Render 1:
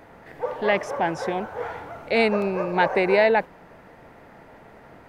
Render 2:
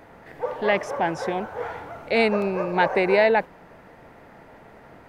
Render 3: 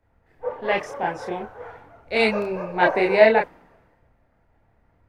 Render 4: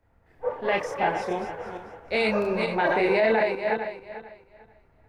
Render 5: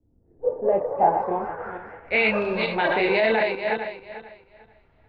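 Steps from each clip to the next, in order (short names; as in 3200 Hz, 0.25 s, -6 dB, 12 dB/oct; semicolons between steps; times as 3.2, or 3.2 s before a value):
nothing audible
chorus voices 6, 0.72 Hz, delay 30 ms, depth 2.2 ms; three-band expander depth 70%; gain +2 dB
regenerating reverse delay 0.222 s, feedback 46%, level -8 dB; limiter -13 dBFS, peak gain reduction 11.5 dB
low-pass sweep 300 Hz -> 3500 Hz, 0.11–2.54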